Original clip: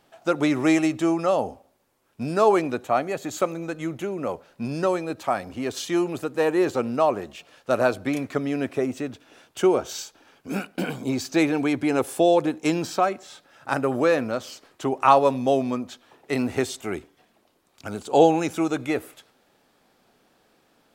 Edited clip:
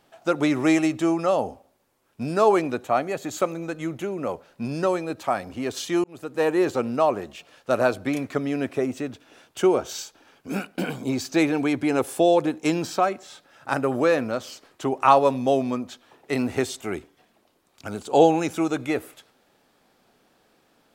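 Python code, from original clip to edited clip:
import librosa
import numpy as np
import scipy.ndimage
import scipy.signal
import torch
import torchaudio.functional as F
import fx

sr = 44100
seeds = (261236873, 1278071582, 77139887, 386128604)

y = fx.edit(x, sr, fx.fade_in_span(start_s=6.04, length_s=0.39), tone=tone)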